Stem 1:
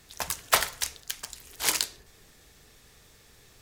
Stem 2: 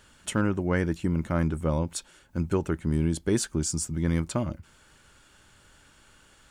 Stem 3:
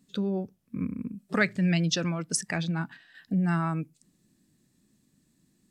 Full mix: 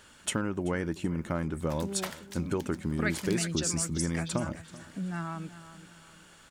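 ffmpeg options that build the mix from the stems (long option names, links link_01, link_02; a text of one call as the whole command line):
ffmpeg -i stem1.wav -i stem2.wav -i stem3.wav -filter_complex "[0:a]highshelf=frequency=5500:gain=-6.5,adelay=1500,volume=-14dB[link_01];[1:a]acompressor=threshold=-27dB:ratio=6,volume=2.5dB,asplit=2[link_02][link_03];[link_03]volume=-19.5dB[link_04];[2:a]adelay=1650,volume=-7dB,asplit=2[link_05][link_06];[link_06]volume=-14dB[link_07];[link_04][link_07]amix=inputs=2:normalize=0,aecho=0:1:383|766|1149|1532|1915:1|0.39|0.152|0.0593|0.0231[link_08];[link_01][link_02][link_05][link_08]amix=inputs=4:normalize=0,lowshelf=frequency=100:gain=-10" out.wav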